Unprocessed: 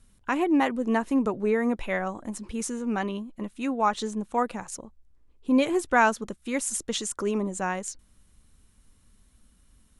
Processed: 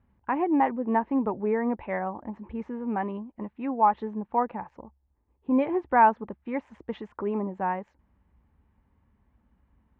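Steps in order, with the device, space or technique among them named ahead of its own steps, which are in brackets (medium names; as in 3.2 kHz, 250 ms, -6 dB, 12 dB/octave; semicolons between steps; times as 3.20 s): bass cabinet (cabinet simulation 63–2000 Hz, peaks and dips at 66 Hz +7 dB, 870 Hz +9 dB, 1.4 kHz -6 dB); trim -2 dB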